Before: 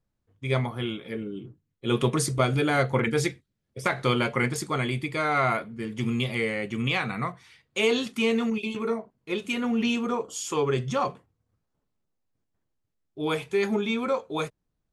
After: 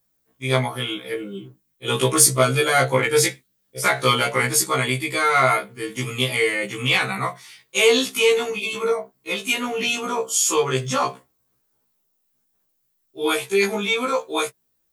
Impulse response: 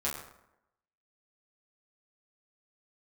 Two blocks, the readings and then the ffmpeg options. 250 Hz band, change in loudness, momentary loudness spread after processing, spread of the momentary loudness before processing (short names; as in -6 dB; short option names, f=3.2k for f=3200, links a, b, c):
-1.0 dB, +6.5 dB, 11 LU, 9 LU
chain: -af "acontrast=83,aemphasis=mode=production:type=bsi,afftfilt=real='re*1.73*eq(mod(b,3),0)':imag='im*1.73*eq(mod(b,3),0)':win_size=2048:overlap=0.75,volume=2dB"